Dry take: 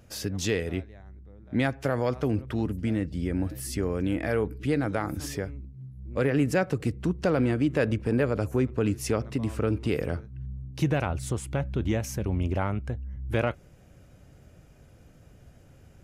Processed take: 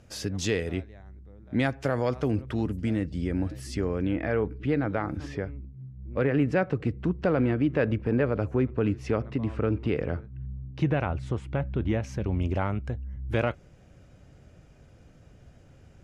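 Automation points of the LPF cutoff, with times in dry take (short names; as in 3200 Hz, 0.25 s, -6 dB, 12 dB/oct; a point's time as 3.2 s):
2.93 s 9000 Hz
3.83 s 5300 Hz
4.15 s 2800 Hz
11.95 s 2800 Hz
12.41 s 7200 Hz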